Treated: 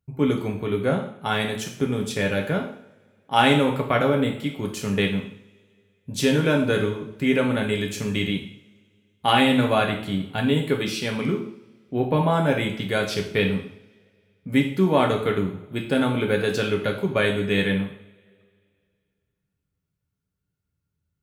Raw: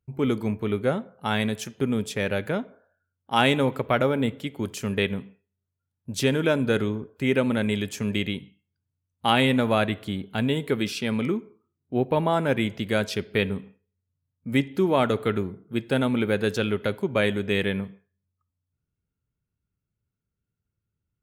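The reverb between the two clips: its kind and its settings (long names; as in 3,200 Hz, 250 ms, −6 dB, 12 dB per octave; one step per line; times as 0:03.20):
coupled-rooms reverb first 0.58 s, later 2.4 s, from −26 dB, DRR 1 dB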